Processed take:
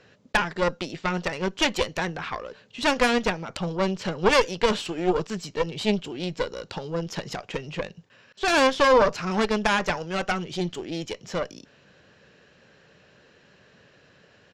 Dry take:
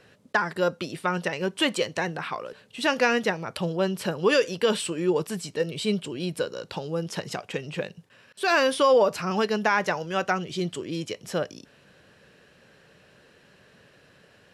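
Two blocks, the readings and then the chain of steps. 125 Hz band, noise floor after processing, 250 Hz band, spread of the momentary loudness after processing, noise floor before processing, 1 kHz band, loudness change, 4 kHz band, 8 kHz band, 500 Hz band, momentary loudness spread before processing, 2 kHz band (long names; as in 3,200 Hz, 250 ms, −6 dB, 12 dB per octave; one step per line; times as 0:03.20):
+0.5 dB, −58 dBFS, +1.0 dB, 13 LU, −58 dBFS, +2.0 dB, +1.0 dB, +1.5 dB, 0.0 dB, 0.0 dB, 11 LU, +1.0 dB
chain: downsampling to 16,000 Hz
harmonic generator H 4 −9 dB, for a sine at −8 dBFS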